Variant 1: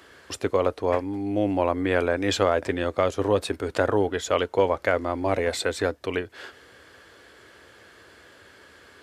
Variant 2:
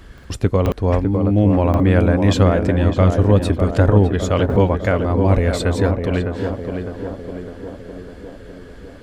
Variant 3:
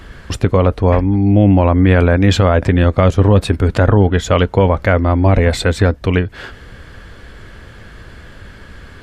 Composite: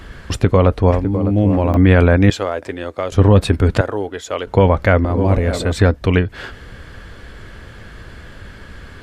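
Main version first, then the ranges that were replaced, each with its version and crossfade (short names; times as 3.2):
3
0.91–1.77 from 2
2.3–3.12 from 1
3.81–4.47 from 1
5.05–5.72 from 2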